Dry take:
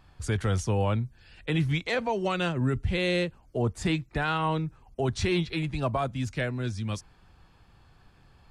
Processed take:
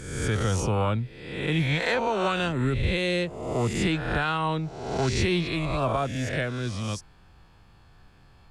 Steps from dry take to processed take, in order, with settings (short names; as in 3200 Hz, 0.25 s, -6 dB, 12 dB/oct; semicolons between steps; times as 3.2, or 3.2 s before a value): spectral swells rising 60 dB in 1.00 s